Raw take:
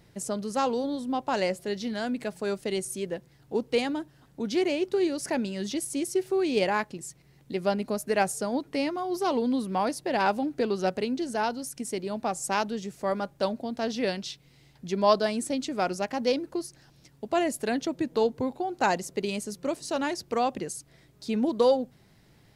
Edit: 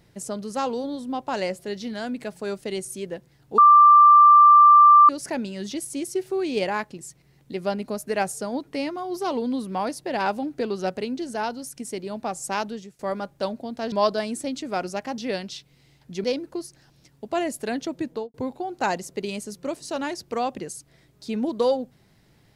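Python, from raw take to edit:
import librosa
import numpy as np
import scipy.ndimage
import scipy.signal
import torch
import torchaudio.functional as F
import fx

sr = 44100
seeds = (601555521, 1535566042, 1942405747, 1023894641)

y = fx.studio_fade_out(x, sr, start_s=18.07, length_s=0.27)
y = fx.edit(y, sr, fx.bleep(start_s=3.58, length_s=1.51, hz=1180.0, db=-8.5),
    fx.fade_out_to(start_s=12.69, length_s=0.3, floor_db=-18.0),
    fx.move(start_s=13.92, length_s=1.06, to_s=16.24), tone=tone)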